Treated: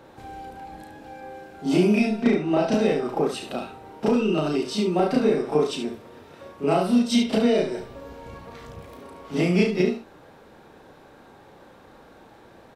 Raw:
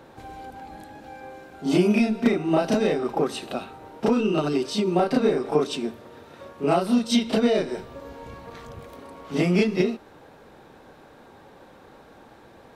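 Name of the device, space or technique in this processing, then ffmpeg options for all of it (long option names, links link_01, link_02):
slapback doubling: -filter_complex "[0:a]asettb=1/sr,asplit=3[link_01][link_02][link_03];[link_01]atrim=end=2.224[link_04];[link_02]atrim=start=2.22:end=2.74,asetpts=PTS-STARTPTS,afade=type=in:duration=0.004:curve=qsin,afade=type=out:start_time=0.516:duration=0.004:curve=qsin,lowpass=6800[link_05];[link_03]atrim=start=2.736[link_06];[link_04][link_05]acrossfade=duration=0.004:curve1=hsin:curve2=qsin[link_07];[link_07][link_06]acrossfade=duration=0.004:curve1=qsin:curve2=hsin,asplit=3[link_08][link_09][link_10];[link_09]adelay=33,volume=-7dB[link_11];[link_10]adelay=71,volume=-8dB[link_12];[link_08][link_11][link_12]amix=inputs=3:normalize=0,volume=-1.5dB"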